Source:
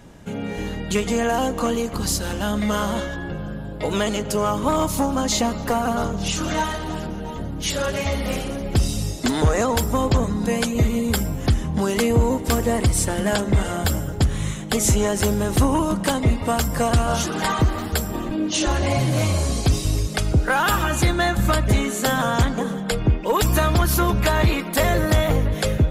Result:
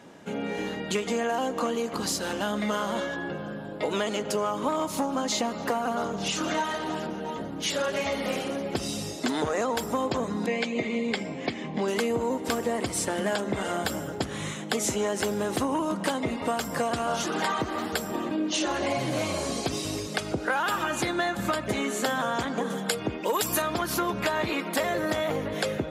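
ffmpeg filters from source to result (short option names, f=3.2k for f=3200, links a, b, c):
-filter_complex "[0:a]asettb=1/sr,asplit=3[a][b][c];[a]atrim=end=10.464[d];[b]atrim=start=10.46:end=11.88,asetpts=PTS-STARTPTS,afade=t=in:d=0.004:c=qsin,afade=t=out:st=1.416:d=0.004:c=qsin,highpass=160,equalizer=f=930:t=q:w=4:g=-3,equalizer=f=1.4k:t=q:w=4:g=-9,equalizer=f=2.2k:t=q:w=4:g=9,equalizer=f=5.9k:t=q:w=4:g=-7,lowpass=f=6.4k:w=0.5412,lowpass=f=6.4k:w=1.3066[e];[c]atrim=start=11.876[f];[d][e]acrossfade=d=0.004:c1=hsin:c2=qsin[g];[g][f]acrossfade=d=0.004:c1=qsin:c2=hsin,asettb=1/sr,asplit=3[h][i][j];[h]atrim=end=22.704[k];[i]atrim=start=22.7:end=23.62,asetpts=PTS-STARTPTS,afade=t=in:d=0.004:c=qsin,afade=t=out:st=0.916:d=0.004:c=qsin,equalizer=f=13k:t=o:w=1.8:g=13[l];[j]atrim=start=23.616[m];[k][l]acrossfade=d=0.004:c1=hsin:c2=qsin[n];[n][m]acrossfade=d=0.004:c1=qsin:c2=hsin,highpass=250,highshelf=f=8.2k:g=-10,acompressor=threshold=-25dB:ratio=3"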